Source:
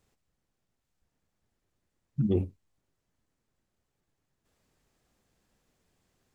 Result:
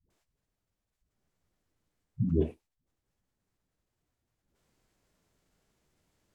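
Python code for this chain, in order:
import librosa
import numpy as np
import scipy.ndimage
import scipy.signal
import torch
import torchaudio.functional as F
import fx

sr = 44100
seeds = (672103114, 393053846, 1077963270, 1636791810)

y = fx.pitch_keep_formants(x, sr, semitones=-3.0)
y = fx.dispersion(y, sr, late='highs', ms=103.0, hz=360.0)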